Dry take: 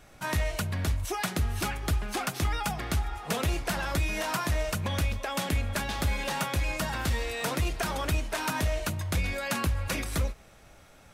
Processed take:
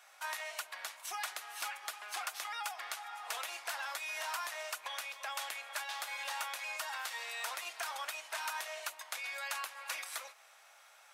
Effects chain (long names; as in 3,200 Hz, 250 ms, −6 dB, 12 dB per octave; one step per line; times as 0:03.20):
high-pass filter 770 Hz 24 dB per octave
downward compressor 1.5 to 1, threshold −43 dBFS, peak gain reduction 6 dB
level −1.5 dB